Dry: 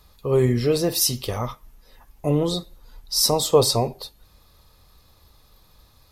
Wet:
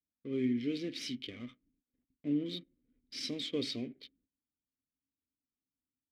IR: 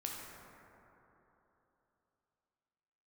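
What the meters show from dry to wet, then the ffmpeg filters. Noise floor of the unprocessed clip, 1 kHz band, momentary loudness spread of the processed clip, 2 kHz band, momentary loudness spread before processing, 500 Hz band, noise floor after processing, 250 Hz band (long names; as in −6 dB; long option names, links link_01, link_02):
−56 dBFS, −34.5 dB, 14 LU, −10.0 dB, 13 LU, −20.5 dB, below −85 dBFS, −8.5 dB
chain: -filter_complex "[0:a]adynamicequalizer=threshold=0.0158:dfrequency=3800:dqfactor=0.85:tfrequency=3800:tqfactor=0.85:attack=5:release=100:ratio=0.375:range=3:mode=boostabove:tftype=bell,agate=range=-19dB:threshold=-47dB:ratio=16:detection=peak,adynamicsmooth=sensitivity=7.5:basefreq=540,asplit=3[link_01][link_02][link_03];[link_01]bandpass=frequency=270:width_type=q:width=8,volume=0dB[link_04];[link_02]bandpass=frequency=2290:width_type=q:width=8,volume=-6dB[link_05];[link_03]bandpass=frequency=3010:width_type=q:width=8,volume=-9dB[link_06];[link_04][link_05][link_06]amix=inputs=3:normalize=0,volume=-1.5dB"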